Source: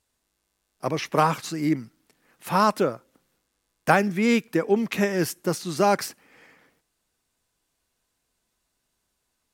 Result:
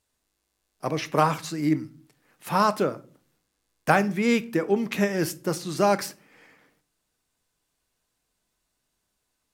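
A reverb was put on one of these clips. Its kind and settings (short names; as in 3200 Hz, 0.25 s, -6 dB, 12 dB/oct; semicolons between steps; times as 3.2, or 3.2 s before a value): shoebox room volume 260 m³, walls furnished, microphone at 0.43 m; gain -1.5 dB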